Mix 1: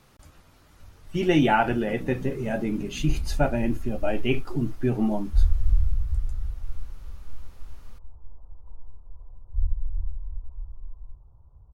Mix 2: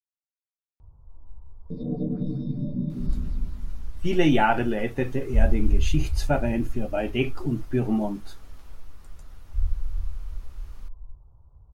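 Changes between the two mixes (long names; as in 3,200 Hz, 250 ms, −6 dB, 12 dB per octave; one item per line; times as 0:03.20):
speech: entry +2.90 s
second sound +11.0 dB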